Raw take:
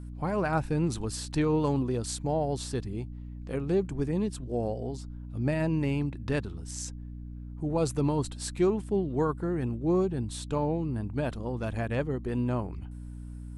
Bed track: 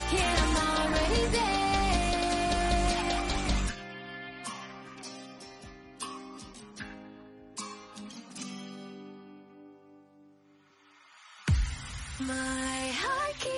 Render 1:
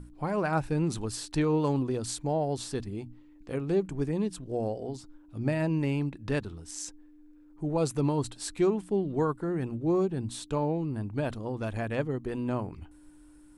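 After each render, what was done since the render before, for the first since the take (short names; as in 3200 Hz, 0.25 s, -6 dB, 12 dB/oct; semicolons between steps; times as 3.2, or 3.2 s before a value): notches 60/120/180/240 Hz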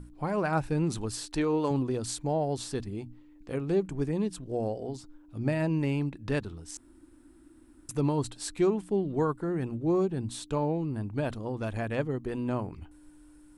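1.26–1.71 bell 130 Hz -10 dB; 6.77–7.89 room tone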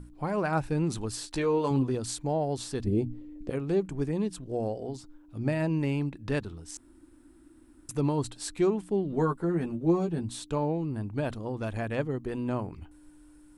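1.26–1.95 doubler 15 ms -6 dB; 2.84–3.5 resonant low shelf 720 Hz +9.5 dB, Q 1.5; 9.11–10.23 doubler 12 ms -4 dB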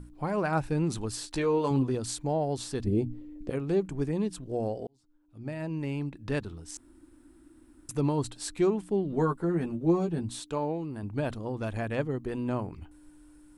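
4.87–6.53 fade in; 10.4–11.03 low shelf 180 Hz -10 dB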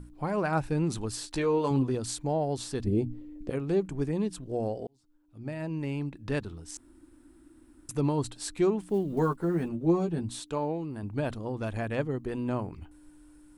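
8.8–9.7 block floating point 7-bit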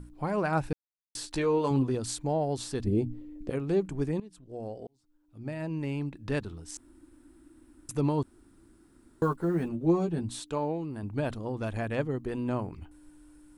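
0.73–1.15 mute; 4.2–5.42 fade in, from -20 dB; 8.23–9.22 room tone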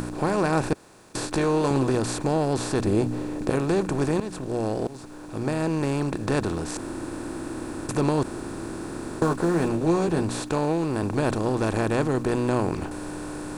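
per-bin compression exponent 0.4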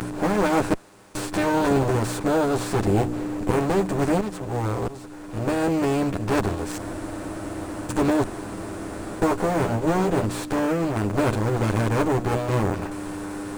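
minimum comb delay 9.9 ms; in parallel at -8 dB: sample-rate reducer 7500 Hz, jitter 0%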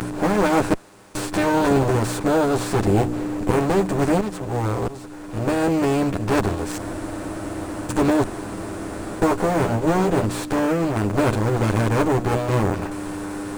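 gain +2.5 dB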